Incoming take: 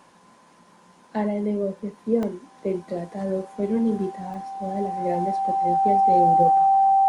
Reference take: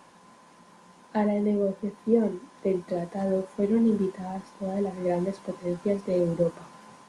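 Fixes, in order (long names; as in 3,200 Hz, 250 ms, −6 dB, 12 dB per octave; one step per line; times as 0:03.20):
notch filter 780 Hz, Q 30
repair the gap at 0:02.23/0:04.34, 1 ms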